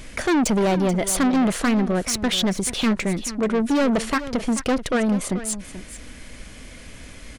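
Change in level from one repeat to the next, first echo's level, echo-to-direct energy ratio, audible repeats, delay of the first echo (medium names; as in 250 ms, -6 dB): no regular repeats, -13.5 dB, -13.5 dB, 1, 434 ms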